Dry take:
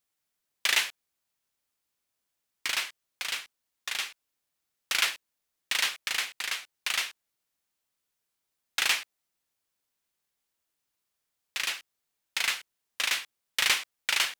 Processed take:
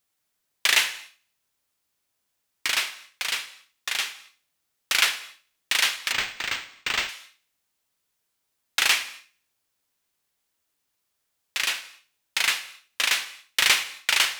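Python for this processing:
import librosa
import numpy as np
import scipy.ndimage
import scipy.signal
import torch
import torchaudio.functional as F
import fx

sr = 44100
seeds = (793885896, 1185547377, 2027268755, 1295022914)

y = fx.echo_thinned(x, sr, ms=75, feedback_pct=41, hz=420.0, wet_db=-22.0)
y = fx.rev_gated(y, sr, seeds[0], gate_ms=290, shape='falling', drr_db=11.5)
y = fx.resample_linear(y, sr, factor=4, at=(6.12, 7.09))
y = F.gain(torch.from_numpy(y), 5.0).numpy()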